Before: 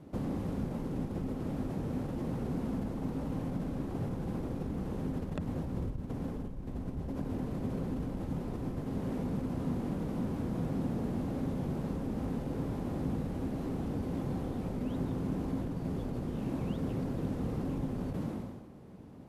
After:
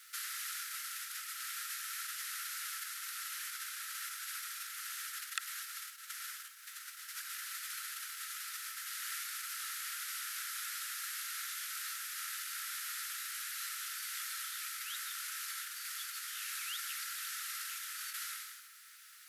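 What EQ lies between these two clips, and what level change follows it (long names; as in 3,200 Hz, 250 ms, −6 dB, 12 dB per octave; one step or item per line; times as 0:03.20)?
Chebyshev high-pass with heavy ripple 1,300 Hz, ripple 3 dB
high-shelf EQ 4,200 Hz +9 dB
high-shelf EQ 10,000 Hz +10.5 dB
+12.5 dB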